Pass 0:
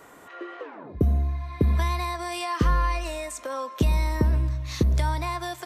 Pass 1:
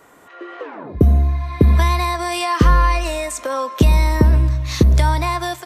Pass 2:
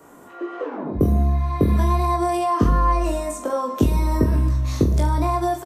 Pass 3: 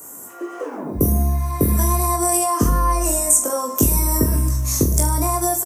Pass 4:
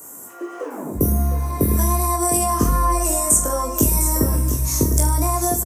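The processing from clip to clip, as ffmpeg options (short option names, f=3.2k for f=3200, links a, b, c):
-af "dynaudnorm=f=370:g=3:m=11.5dB"
-filter_complex "[0:a]acrossover=split=81|1100[a][b][c];[a]acompressor=threshold=-24dB:ratio=4[d];[b]acompressor=threshold=-22dB:ratio=4[e];[c]acompressor=threshold=-34dB:ratio=4[f];[d][e][f]amix=inputs=3:normalize=0,equalizer=f=250:t=o:w=1:g=6,equalizer=f=2k:t=o:w=1:g=-7,equalizer=f=4k:t=o:w=1:g=-6,aecho=1:1:20|44|72.8|107.4|148.8:0.631|0.398|0.251|0.158|0.1"
-af "aexciter=amount=14.2:drive=3.3:freq=5.8k"
-af "aecho=1:1:705:0.355,volume=-1dB"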